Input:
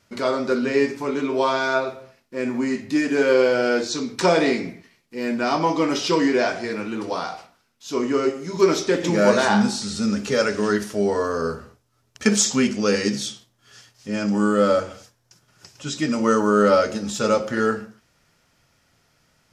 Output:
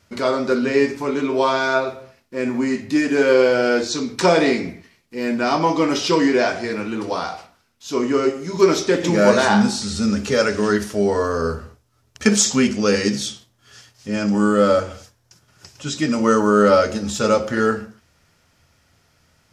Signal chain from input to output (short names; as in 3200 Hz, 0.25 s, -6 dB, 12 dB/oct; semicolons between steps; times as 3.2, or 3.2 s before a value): bell 80 Hz +9.5 dB 0.47 oct; gain +2.5 dB